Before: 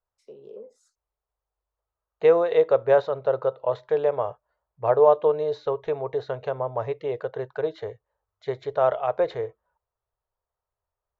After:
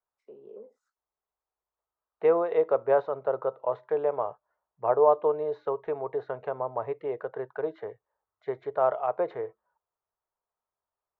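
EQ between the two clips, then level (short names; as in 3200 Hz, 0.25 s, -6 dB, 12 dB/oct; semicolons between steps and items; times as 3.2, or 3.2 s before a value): three-band isolator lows -17 dB, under 180 Hz, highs -23 dB, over 2100 Hz; dynamic EQ 1700 Hz, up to -5 dB, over -44 dBFS, Q 3.2; bell 520 Hz -5.5 dB 0.7 oct; 0.0 dB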